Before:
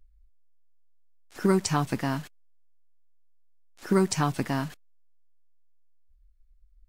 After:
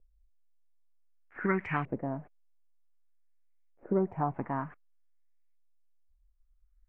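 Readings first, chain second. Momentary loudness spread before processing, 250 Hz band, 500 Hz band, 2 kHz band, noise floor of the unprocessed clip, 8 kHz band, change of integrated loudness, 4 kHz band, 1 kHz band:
11 LU, -7.0 dB, -5.0 dB, -2.5 dB, -60 dBFS, under -40 dB, -6.0 dB, under -20 dB, -3.5 dB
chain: resonant high shelf 3.1 kHz -12 dB, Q 3; LFO low-pass saw up 0.54 Hz 490–2500 Hz; trim -8 dB

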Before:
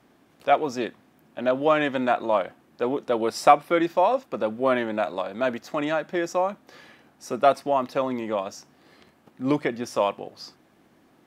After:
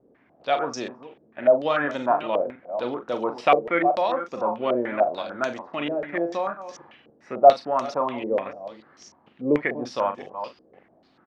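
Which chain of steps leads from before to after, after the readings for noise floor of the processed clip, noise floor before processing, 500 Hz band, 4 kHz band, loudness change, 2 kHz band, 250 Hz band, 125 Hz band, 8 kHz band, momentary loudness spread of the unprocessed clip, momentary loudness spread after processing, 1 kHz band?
-61 dBFS, -60 dBFS, +1.0 dB, -1.0 dB, +0.5 dB, +0.5 dB, -2.0 dB, -3.0 dB, no reading, 13 LU, 16 LU, +0.5 dB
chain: chunks repeated in reverse 284 ms, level -12 dB; doubling 41 ms -8.5 dB; step-sequenced low-pass 6.8 Hz 480–6000 Hz; trim -4.5 dB

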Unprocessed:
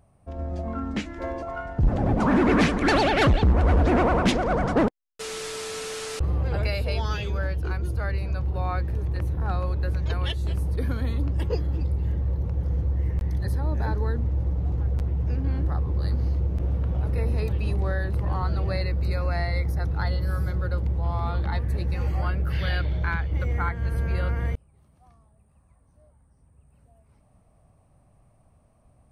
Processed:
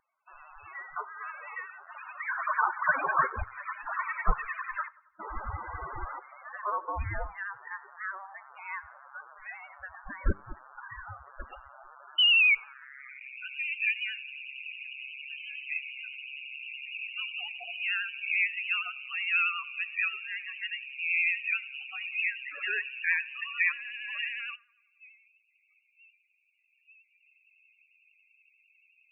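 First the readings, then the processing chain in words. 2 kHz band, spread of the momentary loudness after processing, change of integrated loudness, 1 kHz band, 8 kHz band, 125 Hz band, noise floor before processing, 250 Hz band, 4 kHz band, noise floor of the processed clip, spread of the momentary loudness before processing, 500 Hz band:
+4.5 dB, 18 LU, -4.5 dB, -4.5 dB, under -35 dB, -24.0 dB, -61 dBFS, -26.0 dB, +4.0 dB, -71 dBFS, 10 LU, -19.0 dB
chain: in parallel at -9 dB: Schmitt trigger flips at -32.5 dBFS; on the sum: high-pass sweep 2.1 kHz -> 740 Hz, 12.61–13.44 s; painted sound rise, 12.18–12.55 s, 330–1100 Hz -20 dBFS; frequency inversion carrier 3.3 kHz; loudest bins only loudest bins 16; resonant low shelf 130 Hz +14 dB, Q 1.5; band-passed feedback delay 91 ms, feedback 59%, band-pass 1.1 kHz, level -22.5 dB; dynamic bell 630 Hz, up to -6 dB, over -51 dBFS, Q 2.8; feedback comb 100 Hz, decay 0.3 s, harmonics all, mix 30%; vibrato 11 Hz 46 cents; trim +1.5 dB

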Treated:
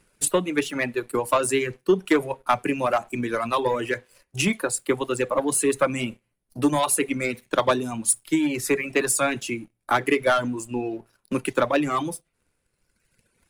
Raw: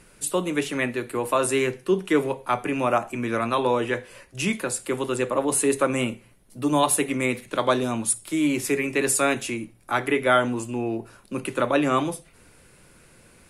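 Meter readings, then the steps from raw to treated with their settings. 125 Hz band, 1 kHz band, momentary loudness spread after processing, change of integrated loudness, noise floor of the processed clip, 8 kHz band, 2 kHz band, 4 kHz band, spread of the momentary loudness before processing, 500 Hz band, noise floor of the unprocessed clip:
-1.0 dB, 0.0 dB, 9 LU, 0.0 dB, -75 dBFS, +1.0 dB, +0.5 dB, 0.0 dB, 9 LU, 0.0 dB, -54 dBFS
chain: waveshaping leveller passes 2; transient shaper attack +6 dB, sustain +2 dB; reverb removal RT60 1.5 s; trim -7 dB

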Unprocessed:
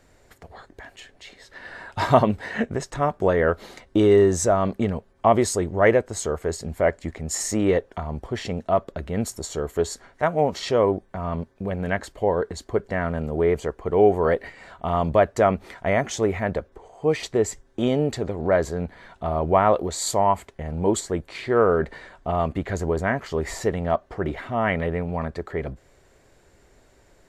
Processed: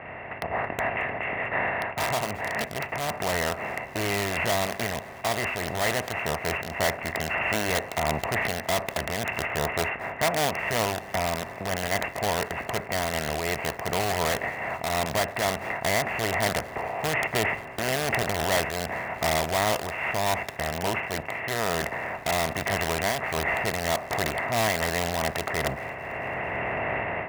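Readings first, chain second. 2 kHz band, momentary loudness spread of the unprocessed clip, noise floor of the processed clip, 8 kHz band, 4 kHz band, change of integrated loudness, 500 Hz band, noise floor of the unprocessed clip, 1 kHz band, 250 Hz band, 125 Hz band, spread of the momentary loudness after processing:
+5.5 dB, 12 LU, -40 dBFS, -1.0 dB, +6.5 dB, -3.5 dB, -7.0 dB, -58 dBFS, -2.0 dB, -8.5 dB, -5.5 dB, 5 LU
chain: spectral levelling over time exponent 0.4; careless resampling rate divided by 8×, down none, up zero stuff; rippled Chebyshev low-pass 2.8 kHz, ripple 9 dB; in parallel at -7 dB: integer overflow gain 13 dB; on the sum: level rider; high-pass 62 Hz; peaking EQ 430 Hz -13 dB 2.1 oct; thinning echo 222 ms, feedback 68%, level -23.5 dB; random flutter of the level, depth 55%; trim -2 dB

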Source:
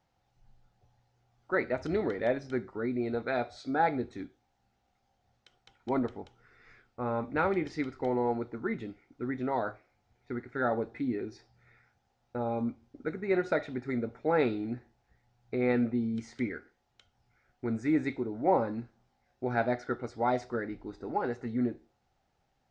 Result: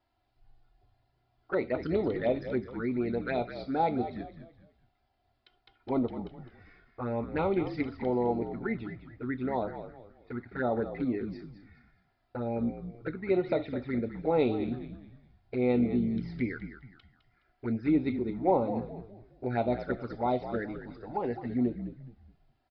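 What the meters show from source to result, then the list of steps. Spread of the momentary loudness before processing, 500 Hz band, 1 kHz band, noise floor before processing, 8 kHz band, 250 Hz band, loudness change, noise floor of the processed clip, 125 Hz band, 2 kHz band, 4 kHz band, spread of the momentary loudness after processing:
12 LU, +1.0 dB, -1.5 dB, -76 dBFS, no reading, +1.5 dB, +0.5 dB, -74 dBFS, +3.0 dB, -4.0 dB, +0.5 dB, 15 LU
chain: touch-sensitive flanger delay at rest 3 ms, full sweep at -26.5 dBFS; resampled via 11.025 kHz; frequency-shifting echo 209 ms, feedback 34%, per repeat -56 Hz, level -10.5 dB; trim +2 dB

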